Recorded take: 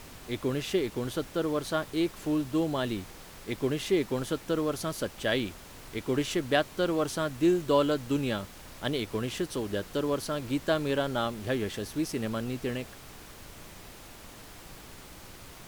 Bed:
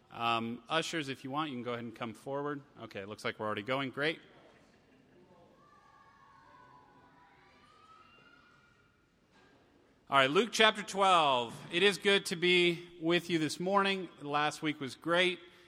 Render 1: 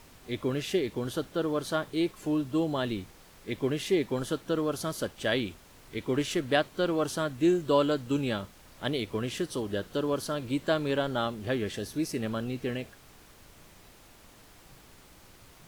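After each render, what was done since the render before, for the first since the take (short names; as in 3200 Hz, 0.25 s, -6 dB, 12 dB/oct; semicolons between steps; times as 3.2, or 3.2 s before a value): noise print and reduce 7 dB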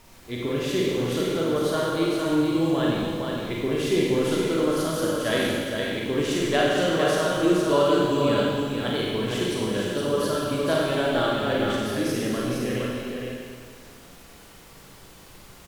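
on a send: echo 0.464 s -4.5 dB; on the sum: Schroeder reverb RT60 1.8 s, combs from 33 ms, DRR -4 dB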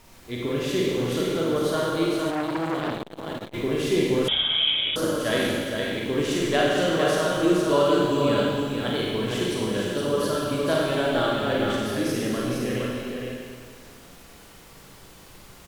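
2.3–3.54 core saturation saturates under 1300 Hz; 4.28–4.96 inverted band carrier 3600 Hz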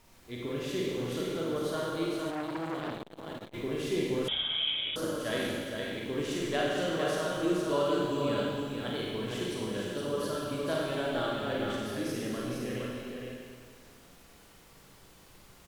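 gain -8.5 dB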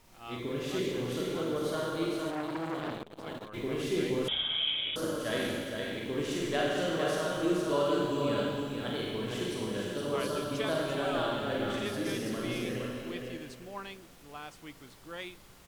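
add bed -13.5 dB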